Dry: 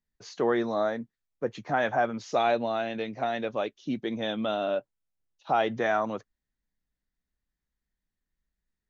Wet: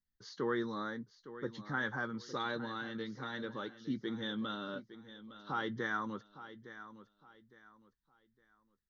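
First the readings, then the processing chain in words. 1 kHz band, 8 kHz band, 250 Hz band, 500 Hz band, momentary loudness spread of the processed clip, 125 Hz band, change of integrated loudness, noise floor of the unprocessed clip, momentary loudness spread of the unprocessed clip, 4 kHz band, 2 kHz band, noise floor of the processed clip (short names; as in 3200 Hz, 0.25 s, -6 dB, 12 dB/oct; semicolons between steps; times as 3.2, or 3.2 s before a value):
-12.5 dB, n/a, -6.5 dB, -14.5 dB, 15 LU, -4.5 dB, -10.5 dB, under -85 dBFS, 9 LU, -6.0 dB, -5.0 dB, -82 dBFS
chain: fixed phaser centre 2500 Hz, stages 6; doubler 15 ms -14 dB; feedback echo 0.86 s, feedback 29%, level -14 dB; gain -4.5 dB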